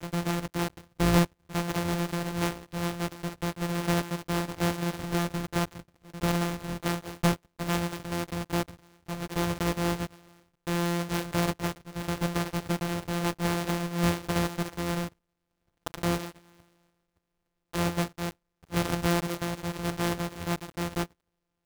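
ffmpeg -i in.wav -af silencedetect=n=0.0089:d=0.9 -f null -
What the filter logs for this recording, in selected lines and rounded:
silence_start: 16.31
silence_end: 17.73 | silence_duration: 1.42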